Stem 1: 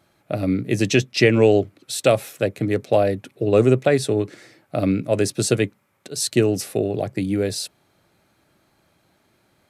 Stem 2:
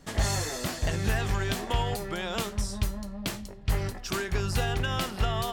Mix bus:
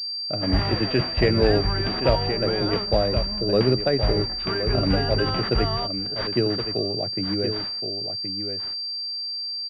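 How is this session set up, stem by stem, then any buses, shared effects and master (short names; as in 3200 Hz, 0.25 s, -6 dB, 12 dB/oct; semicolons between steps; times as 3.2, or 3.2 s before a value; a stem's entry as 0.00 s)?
-5.0 dB, 0.00 s, no send, echo send -8 dB, dry
+3.0 dB, 0.35 s, no send, echo send -23 dB, dry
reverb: off
echo: echo 1.071 s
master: pulse-width modulation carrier 4700 Hz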